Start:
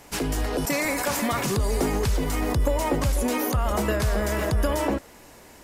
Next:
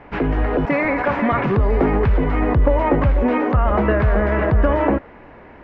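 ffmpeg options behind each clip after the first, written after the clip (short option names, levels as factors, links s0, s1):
-af "lowpass=f=2200:w=0.5412,lowpass=f=2200:w=1.3066,volume=2.37"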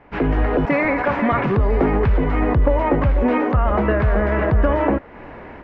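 -af "dynaudnorm=f=100:g=3:m=4.22,volume=0.447"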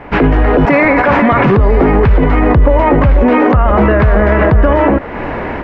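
-af "alimiter=level_in=8.41:limit=0.891:release=50:level=0:latency=1,volume=0.891"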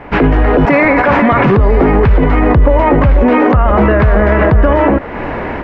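-af anull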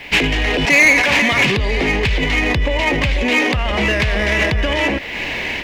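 -af "aexciter=amount=8.4:drive=9.8:freq=2100,volume=0.316"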